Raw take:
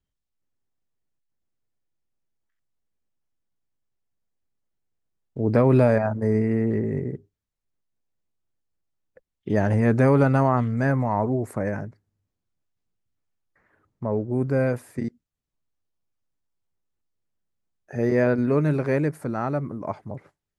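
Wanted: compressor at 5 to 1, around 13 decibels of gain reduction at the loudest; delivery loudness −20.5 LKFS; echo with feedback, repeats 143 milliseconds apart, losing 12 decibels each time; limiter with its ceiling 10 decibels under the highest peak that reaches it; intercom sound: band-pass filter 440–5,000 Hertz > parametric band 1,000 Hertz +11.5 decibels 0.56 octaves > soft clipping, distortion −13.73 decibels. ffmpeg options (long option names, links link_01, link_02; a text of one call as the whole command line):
ffmpeg -i in.wav -af "acompressor=threshold=-28dB:ratio=5,alimiter=level_in=2.5dB:limit=-24dB:level=0:latency=1,volume=-2.5dB,highpass=440,lowpass=5000,equalizer=frequency=1000:width_type=o:width=0.56:gain=11.5,aecho=1:1:143|286|429:0.251|0.0628|0.0157,asoftclip=threshold=-31.5dB,volume=21dB" out.wav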